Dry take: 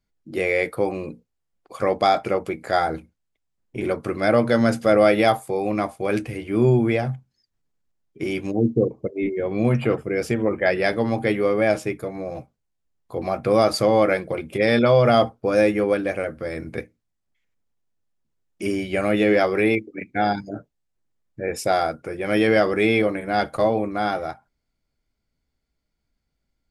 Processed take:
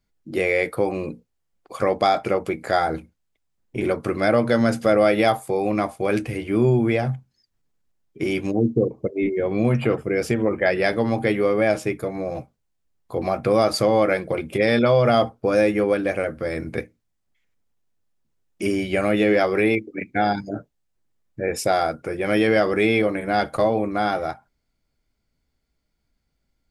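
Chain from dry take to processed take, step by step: compression 1.5:1, threshold -23 dBFS, peak gain reduction 4.5 dB; trim +3 dB

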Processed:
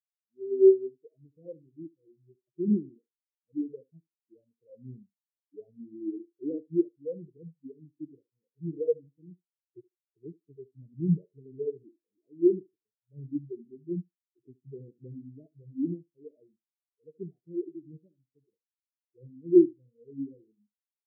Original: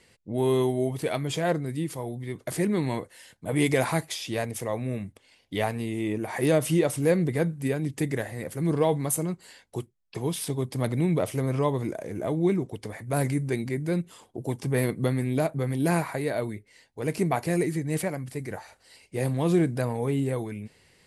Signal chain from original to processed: self-modulated delay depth 0.32 ms; high-pass 120 Hz 6 dB/octave; resonant low shelf 570 Hz +7.5 dB, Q 1.5; level rider gain up to 11.5 dB; on a send: band-passed feedback delay 73 ms, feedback 45%, band-pass 350 Hz, level -5.5 dB; on the sum: spectral contrast expander 4:1; trim -8.5 dB

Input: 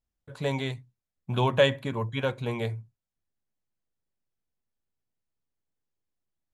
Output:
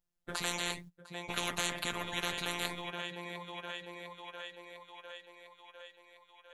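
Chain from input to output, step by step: gate -48 dBFS, range -16 dB; robot voice 174 Hz; on a send: thinning echo 702 ms, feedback 64%, high-pass 340 Hz, level -21.5 dB; on the sum: spectrum-flattening compressor 10:1; trim -4.5 dB

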